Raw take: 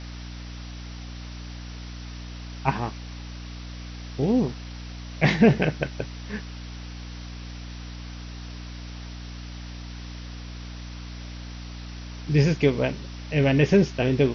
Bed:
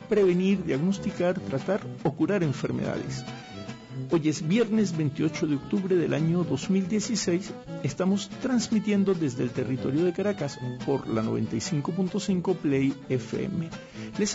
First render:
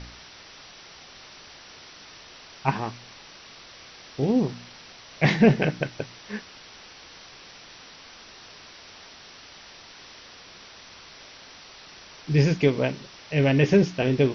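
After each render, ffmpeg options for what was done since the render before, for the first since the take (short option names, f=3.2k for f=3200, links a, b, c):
-af "bandreject=f=60:t=h:w=4,bandreject=f=120:t=h:w=4,bandreject=f=180:t=h:w=4,bandreject=f=240:t=h:w=4,bandreject=f=300:t=h:w=4"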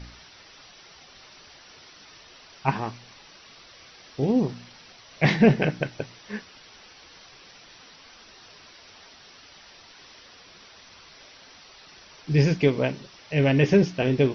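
-af "afftdn=nr=6:nf=-47"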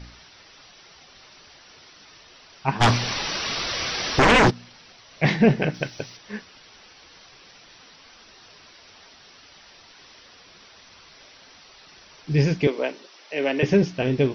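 -filter_complex "[0:a]asplit=3[a][b][c];[a]afade=t=out:st=2.8:d=0.02[d];[b]aeval=exprs='0.266*sin(PI/2*7.94*val(0)/0.266)':c=same,afade=t=in:st=2.8:d=0.02,afade=t=out:st=4.49:d=0.02[e];[c]afade=t=in:st=4.49:d=0.02[f];[d][e][f]amix=inputs=3:normalize=0,asettb=1/sr,asplit=3[g][h][i];[g]atrim=end=5.744[j];[h]atrim=start=5.74:end=6.17,asetpts=PTS-STARTPTS,afade=t=in:d=0.004:c=qsin,afade=t=out:st=0.426:d=0.004:c=qsin,aemphasis=mode=production:type=75fm[k];[i]atrim=start=6.166[l];[j][k]acrossfade=d=0.004:c1=hsin:c2=qsin[m];[m][l]acrossfade=d=0.004:c1=qsin:c2=hsin,asettb=1/sr,asplit=3[n][o][p];[n]atrim=end=12.674[q];[o]atrim=start=12.67:end=13.63,asetpts=PTS-STARTPTS,afade=t=in:d=0.004:c=qsin,afade=t=out:st=0.956:d=0.004:c=qsin,highpass=f=300:w=0.5412,highpass=f=300:w=1.3066[r];[p]atrim=start=13.626[s];[q][r]acrossfade=d=0.004:c1=hsin:c2=qsin[t];[t][s]acrossfade=d=0.004:c1=qsin:c2=hsin"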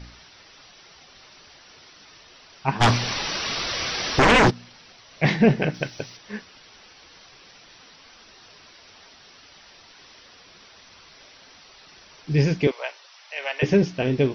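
-filter_complex "[0:a]asettb=1/sr,asplit=3[a][b][c];[a]atrim=end=12.714[d];[b]atrim=start=12.71:end=13.62,asetpts=PTS-STARTPTS,afade=t=in:d=0.004:c=qsin,afade=t=out:st=0.906:d=0.004:c=qsin,highpass=f=710:w=0.5412,highpass=f=710:w=1.3066[e];[c]atrim=start=13.616[f];[d][e]acrossfade=d=0.004:c1=hsin:c2=qsin[g];[g][f]acrossfade=d=0.004:c1=qsin:c2=hsin"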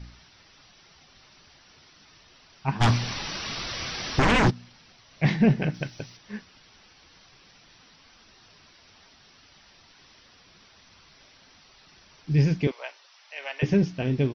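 -af "firequalizer=gain_entry='entry(150,0);entry(450,-8);entry(810,-6)':delay=0.05:min_phase=1"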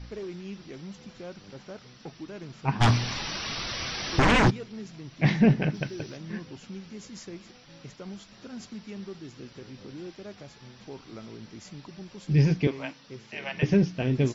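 -filter_complex "[1:a]volume=-16dB[a];[0:a][a]amix=inputs=2:normalize=0"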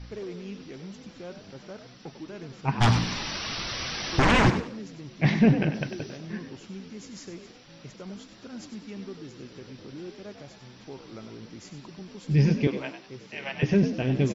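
-filter_complex "[0:a]asplit=4[a][b][c][d];[b]adelay=97,afreqshift=60,volume=-10dB[e];[c]adelay=194,afreqshift=120,volume=-20.2dB[f];[d]adelay=291,afreqshift=180,volume=-30.3dB[g];[a][e][f][g]amix=inputs=4:normalize=0"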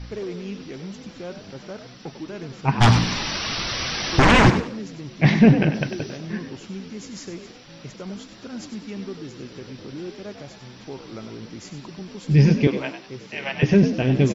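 -af "volume=6dB"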